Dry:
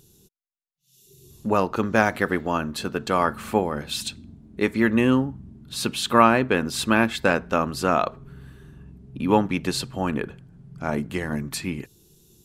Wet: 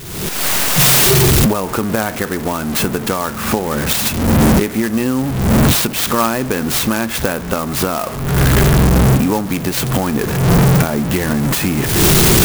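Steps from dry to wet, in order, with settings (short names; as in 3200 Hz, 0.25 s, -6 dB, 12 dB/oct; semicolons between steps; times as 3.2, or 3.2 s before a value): zero-crossing step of -25.5 dBFS; recorder AGC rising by 51 dB/s; clock jitter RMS 0.057 ms; gain -1 dB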